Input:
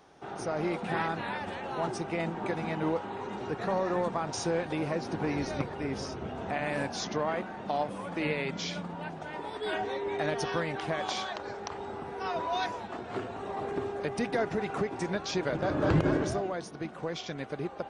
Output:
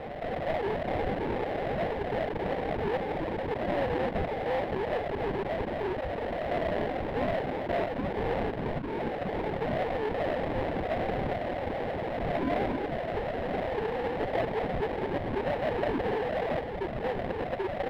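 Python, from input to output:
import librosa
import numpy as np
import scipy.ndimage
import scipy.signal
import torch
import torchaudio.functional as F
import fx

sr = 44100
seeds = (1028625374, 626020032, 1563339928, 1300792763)

y = fx.sine_speech(x, sr)
y = fx.low_shelf(y, sr, hz=490.0, db=-9.5)
y = fx.sample_hold(y, sr, seeds[0], rate_hz=1300.0, jitter_pct=20)
y = fx.air_absorb(y, sr, metres=460.0)
y = fx.env_flatten(y, sr, amount_pct=70)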